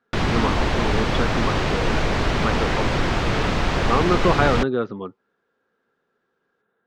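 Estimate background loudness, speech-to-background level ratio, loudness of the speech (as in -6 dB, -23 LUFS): -22.5 LUFS, -3.0 dB, -25.5 LUFS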